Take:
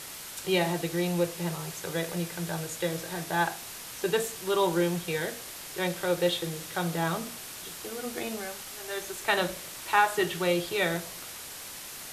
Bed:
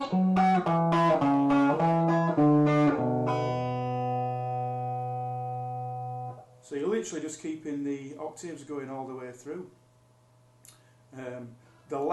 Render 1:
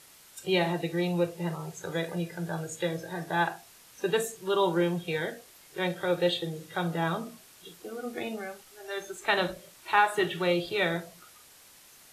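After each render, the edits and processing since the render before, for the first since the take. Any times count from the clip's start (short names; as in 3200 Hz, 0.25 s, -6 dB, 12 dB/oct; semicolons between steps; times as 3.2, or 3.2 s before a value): noise print and reduce 13 dB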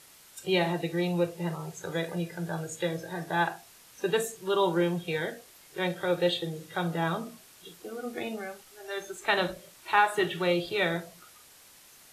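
nothing audible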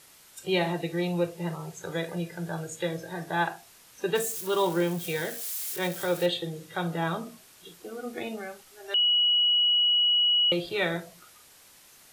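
4.15–6.26 switching spikes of -29.5 dBFS; 8.94–10.52 bleep 2920 Hz -19.5 dBFS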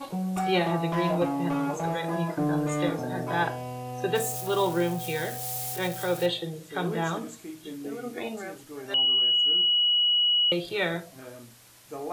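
add bed -5.5 dB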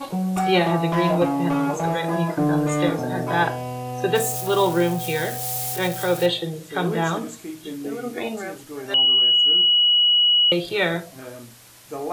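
gain +6 dB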